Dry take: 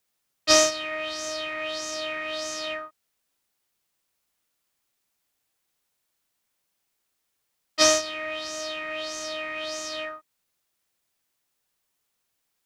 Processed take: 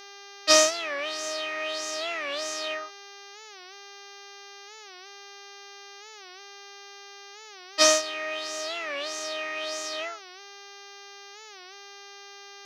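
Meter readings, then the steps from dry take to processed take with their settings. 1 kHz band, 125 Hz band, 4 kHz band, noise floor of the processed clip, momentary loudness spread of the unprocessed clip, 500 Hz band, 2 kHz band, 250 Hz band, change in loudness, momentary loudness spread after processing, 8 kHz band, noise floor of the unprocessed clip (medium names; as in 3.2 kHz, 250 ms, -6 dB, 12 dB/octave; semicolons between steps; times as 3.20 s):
+0.5 dB, no reading, 0.0 dB, -46 dBFS, 14 LU, -0.5 dB, +0.5 dB, -3.5 dB, 0.0 dB, 24 LU, 0.0 dB, -78 dBFS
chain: mains buzz 400 Hz, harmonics 16, -46 dBFS -2 dB/octave; tone controls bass -11 dB, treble 0 dB; warped record 45 rpm, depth 160 cents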